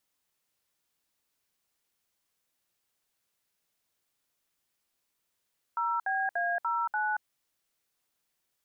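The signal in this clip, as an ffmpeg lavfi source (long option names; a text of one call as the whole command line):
ffmpeg -f lavfi -i "aevalsrc='0.0335*clip(min(mod(t,0.292),0.229-mod(t,0.292))/0.002,0,1)*(eq(floor(t/0.292),0)*(sin(2*PI*941*mod(t,0.292))+sin(2*PI*1336*mod(t,0.292)))+eq(floor(t/0.292),1)*(sin(2*PI*770*mod(t,0.292))+sin(2*PI*1633*mod(t,0.292)))+eq(floor(t/0.292),2)*(sin(2*PI*697*mod(t,0.292))+sin(2*PI*1633*mod(t,0.292)))+eq(floor(t/0.292),3)*(sin(2*PI*941*mod(t,0.292))+sin(2*PI*1336*mod(t,0.292)))+eq(floor(t/0.292),4)*(sin(2*PI*852*mod(t,0.292))+sin(2*PI*1477*mod(t,0.292))))':duration=1.46:sample_rate=44100" out.wav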